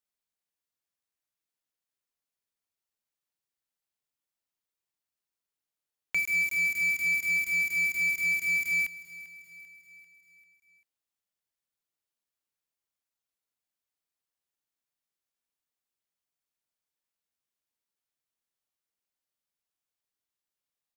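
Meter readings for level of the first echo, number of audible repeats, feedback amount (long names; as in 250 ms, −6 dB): −17.0 dB, 4, 54%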